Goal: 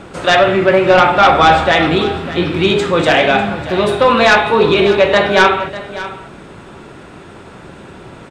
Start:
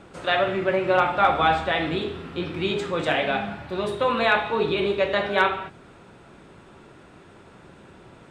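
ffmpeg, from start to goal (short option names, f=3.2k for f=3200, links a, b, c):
-af "aeval=exprs='0.473*sin(PI/2*1.78*val(0)/0.473)':c=same,aecho=1:1:597:0.178,volume=4dB"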